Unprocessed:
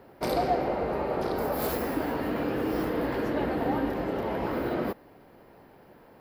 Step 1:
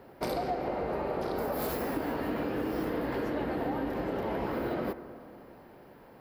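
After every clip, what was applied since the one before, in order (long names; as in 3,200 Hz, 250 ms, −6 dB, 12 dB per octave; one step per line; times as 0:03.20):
downward compressor, threshold −29 dBFS, peak gain reduction 8 dB
on a send at −13 dB: convolution reverb RT60 2.9 s, pre-delay 48 ms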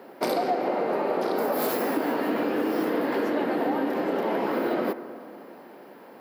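high-pass filter 210 Hz 24 dB per octave
level +7 dB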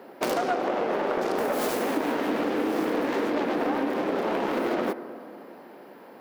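phase distortion by the signal itself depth 0.27 ms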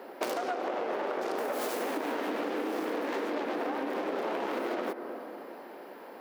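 high-pass filter 290 Hz 12 dB per octave
downward compressor, threshold −31 dBFS, peak gain reduction 9 dB
level +1.5 dB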